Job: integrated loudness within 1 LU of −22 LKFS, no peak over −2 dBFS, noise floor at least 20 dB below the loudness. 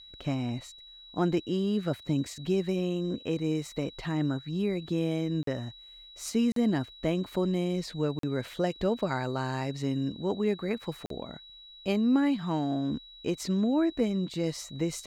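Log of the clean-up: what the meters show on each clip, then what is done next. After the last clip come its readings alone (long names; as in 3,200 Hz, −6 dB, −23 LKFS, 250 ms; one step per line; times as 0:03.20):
number of dropouts 4; longest dropout 43 ms; interfering tone 3,900 Hz; level of the tone −48 dBFS; integrated loudness −30.5 LKFS; sample peak −13.5 dBFS; target loudness −22.0 LKFS
→ repair the gap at 0:05.43/0:06.52/0:08.19/0:11.06, 43 ms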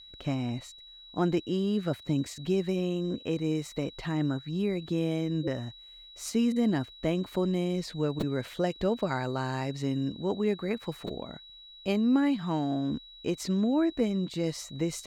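number of dropouts 0; interfering tone 3,900 Hz; level of the tone −48 dBFS
→ notch filter 3,900 Hz, Q 30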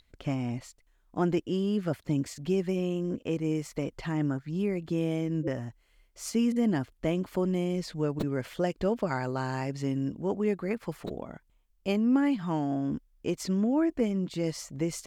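interfering tone none found; integrated loudness −30.5 LKFS; sample peak −13.5 dBFS; target loudness −22.0 LKFS
→ level +8.5 dB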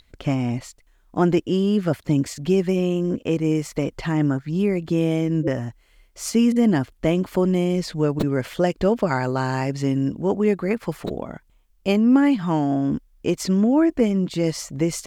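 integrated loudness −22.0 LKFS; sample peak −5.0 dBFS; background noise floor −58 dBFS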